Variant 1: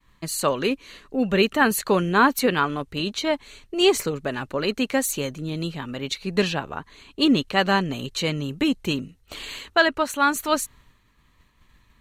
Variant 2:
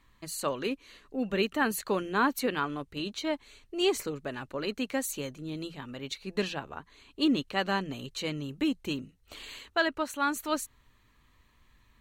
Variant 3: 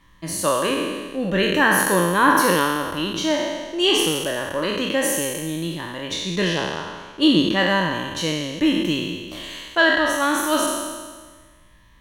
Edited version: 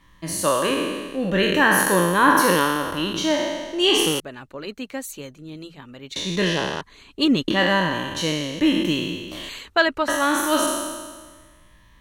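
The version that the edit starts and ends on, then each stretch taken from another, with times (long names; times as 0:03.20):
3
0:04.20–0:06.16: punch in from 2
0:06.81–0:07.48: punch in from 1
0:09.49–0:10.08: punch in from 1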